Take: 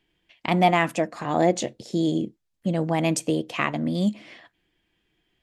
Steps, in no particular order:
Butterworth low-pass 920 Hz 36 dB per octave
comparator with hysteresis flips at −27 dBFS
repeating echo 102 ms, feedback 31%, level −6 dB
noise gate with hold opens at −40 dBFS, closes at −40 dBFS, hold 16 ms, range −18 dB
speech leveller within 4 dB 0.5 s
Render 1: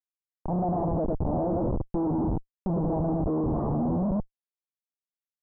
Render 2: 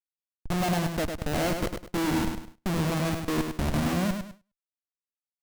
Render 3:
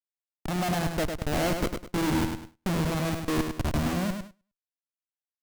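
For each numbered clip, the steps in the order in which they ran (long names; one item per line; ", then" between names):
speech leveller, then repeating echo, then comparator with hysteresis, then Butterworth low-pass, then noise gate with hold
speech leveller, then Butterworth low-pass, then comparator with hysteresis, then repeating echo, then noise gate with hold
Butterworth low-pass, then comparator with hysteresis, then speech leveller, then repeating echo, then noise gate with hold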